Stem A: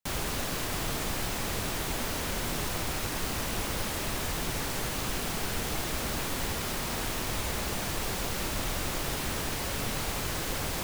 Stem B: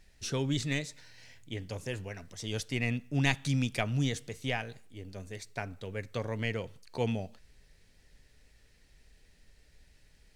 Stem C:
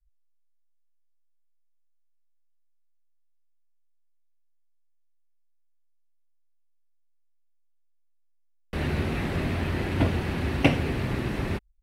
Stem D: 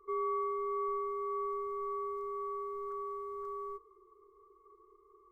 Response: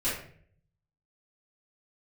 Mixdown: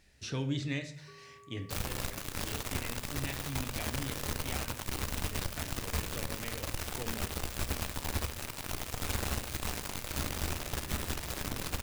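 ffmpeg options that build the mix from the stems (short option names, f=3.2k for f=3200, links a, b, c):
-filter_complex "[0:a]equalizer=f=74:t=o:w=0.57:g=14.5,acrusher=bits=3:mix=0:aa=0.5,adelay=1650,volume=2dB,asplit=2[a][b];[b]volume=-18.5dB[c];[1:a]acrossover=split=5300[d][e];[e]acompressor=threshold=-54dB:ratio=4:attack=1:release=60[f];[d][f]amix=inputs=2:normalize=0,highpass=49,acompressor=threshold=-39dB:ratio=1.5,volume=-1dB,asplit=2[g][h];[h]volume=-14dB[i];[2:a]adelay=1500,volume=-12.5dB[j];[3:a]acompressor=threshold=-44dB:ratio=6,adelay=1000,volume=-11dB[k];[4:a]atrim=start_sample=2205[l];[c][i]amix=inputs=2:normalize=0[m];[m][l]afir=irnorm=-1:irlink=0[n];[a][g][j][k][n]amix=inputs=5:normalize=0,alimiter=limit=-22dB:level=0:latency=1:release=318"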